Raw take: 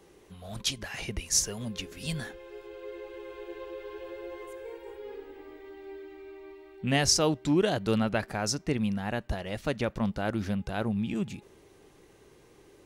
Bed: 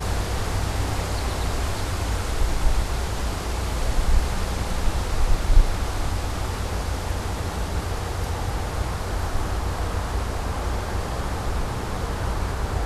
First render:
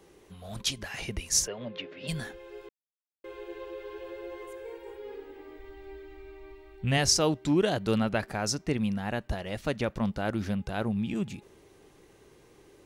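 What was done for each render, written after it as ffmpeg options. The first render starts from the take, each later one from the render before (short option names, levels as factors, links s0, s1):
-filter_complex "[0:a]asplit=3[s0][s1][s2];[s0]afade=t=out:st=1.46:d=0.02[s3];[s1]highpass=f=140:w=0.5412,highpass=f=140:w=1.3066,equalizer=f=200:t=q:w=4:g=-9,equalizer=f=570:t=q:w=4:g=8,equalizer=f=2000:t=q:w=4:g=3,lowpass=f=3500:w=0.5412,lowpass=f=3500:w=1.3066,afade=t=in:st=1.46:d=0.02,afade=t=out:st=2.07:d=0.02[s4];[s2]afade=t=in:st=2.07:d=0.02[s5];[s3][s4][s5]amix=inputs=3:normalize=0,asplit=3[s6][s7][s8];[s6]afade=t=out:st=5.57:d=0.02[s9];[s7]asubboost=boost=8.5:cutoff=75,afade=t=in:st=5.57:d=0.02,afade=t=out:st=6.97:d=0.02[s10];[s8]afade=t=in:st=6.97:d=0.02[s11];[s9][s10][s11]amix=inputs=3:normalize=0,asplit=3[s12][s13][s14];[s12]atrim=end=2.69,asetpts=PTS-STARTPTS,afade=t=out:st=2.686:d=0.004:c=hsin[s15];[s13]atrim=start=2.69:end=3.24,asetpts=PTS-STARTPTS,volume=0[s16];[s14]atrim=start=3.24,asetpts=PTS-STARTPTS,afade=t=in:d=0.004:c=hsin[s17];[s15][s16][s17]concat=n=3:v=0:a=1"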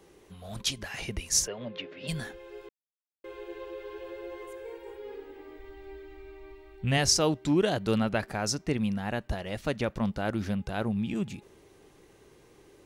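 -af anull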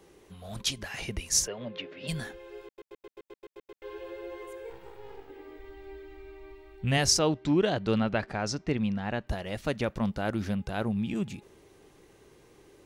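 -filter_complex "[0:a]asettb=1/sr,asplit=3[s0][s1][s2];[s0]atrim=end=4.704[s3];[s1]atrim=start=4.7:end=5.3,asetpts=PTS-STARTPTS,afade=t=in:d=0.004:c=qsin,afade=t=out:st=0.596:d=0.004:c=qsin,aeval=exprs='max(val(0),0)':c=same[s4];[s2]atrim=start=5.296[s5];[s3][s4]acrossfade=d=0.004:c1=hsin:c2=qsin[s6];[s6][s5]acrossfade=d=0.004:c1=qsin:c2=hsin,asettb=1/sr,asplit=3[s7][s8][s9];[s7]atrim=end=7.194[s10];[s8]atrim=start=7.19:end=9.27,asetpts=PTS-STARTPTS,afade=t=in:d=0.004:c=qsin,afade=t=out:st=2.076:d=0.004:c=qsin,lowpass=5000[s11];[s9]atrim=start=9.266[s12];[s10][s11]acrossfade=d=0.004:c1=hsin:c2=qsin[s13];[s13][s12]acrossfade=d=0.004:c1=qsin:c2=hsin,asplit=10[s14][s15][s16][s17][s18][s19][s20][s21][s22][s23];[s14]atrim=end=2.782[s24];[s15]atrim=start=2.648:end=2.782[s25];[s16]atrim=start=2.648:end=2.782[s26];[s17]atrim=start=2.648:end=2.782[s27];[s18]atrim=start=2.648:end=2.782[s28];[s19]atrim=start=2.648:end=2.782[s29];[s20]atrim=start=2.648:end=2.782[s30];[s21]atrim=start=2.648:end=2.782[s31];[s22]atrim=start=2.648:end=2.782[s32];[s23]atrim=start=3.818[s33];[s24][s25]acrossfade=d=0.004:c1=hsin:c2=hsin[s34];[s34][s26]acrossfade=d=0.004:c1=hsin:c2=hsin[s35];[s35][s27]acrossfade=d=0.004:c1=hsin:c2=hsin[s36];[s36][s28]acrossfade=d=0.004:c1=hsin:c2=hsin[s37];[s37][s29]acrossfade=d=0.004:c1=hsin:c2=hsin[s38];[s38][s30]acrossfade=d=0.004:c1=hsin:c2=hsin[s39];[s39][s31]acrossfade=d=0.004:c1=hsin:c2=hsin[s40];[s40][s32]acrossfade=d=0.004:c1=hsin:c2=hsin[s41];[s41][s33]acrossfade=d=0.004:c1=hsin:c2=hsin"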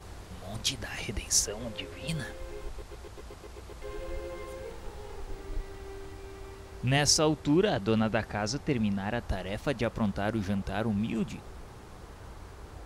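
-filter_complex "[1:a]volume=0.0944[s0];[0:a][s0]amix=inputs=2:normalize=0"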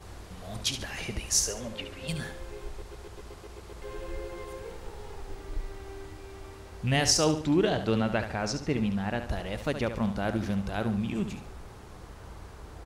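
-af "aecho=1:1:71|142|213|284:0.335|0.121|0.0434|0.0156"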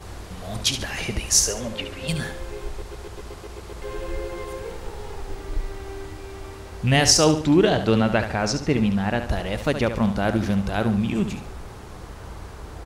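-af "volume=2.37"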